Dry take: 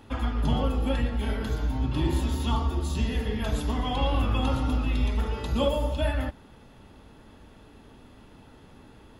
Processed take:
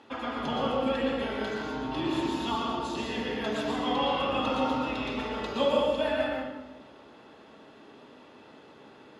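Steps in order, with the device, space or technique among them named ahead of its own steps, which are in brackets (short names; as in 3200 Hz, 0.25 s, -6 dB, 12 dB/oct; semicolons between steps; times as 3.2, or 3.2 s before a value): supermarket ceiling speaker (BPF 310–5700 Hz; reverb RT60 1.1 s, pre-delay 0.109 s, DRR -0.5 dB)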